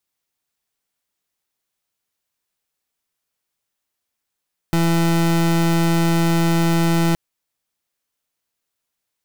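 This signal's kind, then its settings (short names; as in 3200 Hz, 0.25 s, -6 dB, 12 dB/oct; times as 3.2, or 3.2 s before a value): pulse 167 Hz, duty 30% -16.5 dBFS 2.42 s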